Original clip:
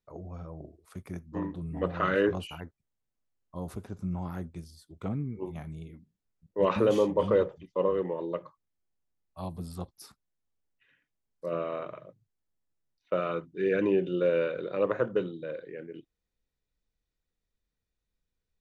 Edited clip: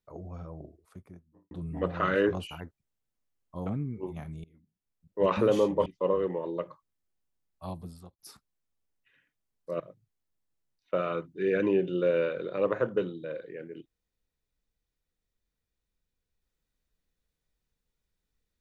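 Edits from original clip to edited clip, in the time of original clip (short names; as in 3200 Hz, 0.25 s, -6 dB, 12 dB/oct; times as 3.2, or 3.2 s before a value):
0.47–1.51 studio fade out
3.66–5.05 cut
5.83–6.61 fade in linear, from -19.5 dB
7.25–7.61 cut
9.4–9.94 fade out
11.55–11.99 cut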